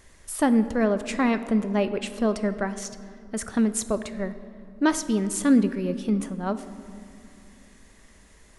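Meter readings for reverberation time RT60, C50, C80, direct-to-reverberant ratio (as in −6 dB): 2.6 s, 13.0 dB, 14.0 dB, 11.0 dB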